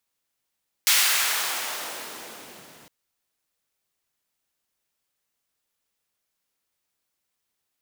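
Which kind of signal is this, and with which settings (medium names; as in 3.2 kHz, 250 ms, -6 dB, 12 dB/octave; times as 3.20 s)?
swept filtered noise pink, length 2.01 s highpass, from 2.3 kHz, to 150 Hz, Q 0.77, exponential, gain ramp -37 dB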